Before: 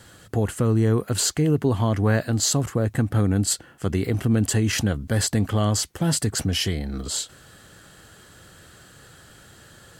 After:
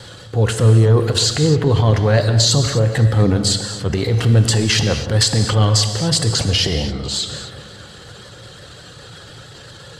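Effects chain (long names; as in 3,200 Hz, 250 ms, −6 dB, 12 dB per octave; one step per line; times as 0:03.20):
mu-law and A-law mismatch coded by mu
low-pass filter 8,600 Hz 12 dB per octave
notch filter 640 Hz, Q 12
reverb reduction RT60 0.71 s
graphic EQ with 10 bands 125 Hz +11 dB, 250 Hz −4 dB, 500 Hz +9 dB, 1,000 Hz +3 dB, 4,000 Hz +11 dB
transient designer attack −5 dB, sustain +7 dB
pitch vibrato 5.6 Hz 43 cents
on a send: feedback echo with a low-pass in the loop 263 ms, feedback 68%, low-pass 4,400 Hz, level −17 dB
on the sum: reverb whose tail is shaped and stops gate 280 ms flat, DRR 6.5 dB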